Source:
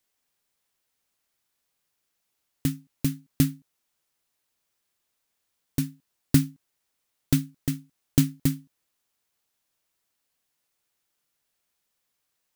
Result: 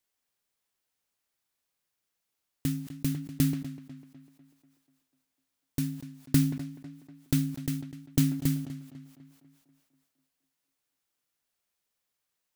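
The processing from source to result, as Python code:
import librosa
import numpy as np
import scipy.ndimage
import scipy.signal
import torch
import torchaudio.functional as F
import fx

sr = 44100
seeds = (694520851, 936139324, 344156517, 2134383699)

y = fx.echo_tape(x, sr, ms=247, feedback_pct=55, wet_db=-11, lp_hz=3300.0, drive_db=10.0, wow_cents=34)
y = fx.sustainer(y, sr, db_per_s=79.0)
y = F.gain(torch.from_numpy(y), -5.0).numpy()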